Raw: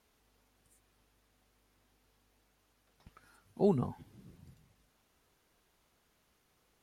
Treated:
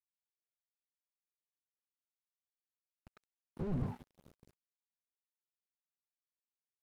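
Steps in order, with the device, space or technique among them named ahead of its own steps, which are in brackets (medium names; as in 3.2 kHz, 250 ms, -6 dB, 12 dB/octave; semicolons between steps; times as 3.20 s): hum notches 60/120/180/240/300 Hz; early transistor amplifier (crossover distortion -53 dBFS; slew-rate limiter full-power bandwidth 2.8 Hz); trim +4 dB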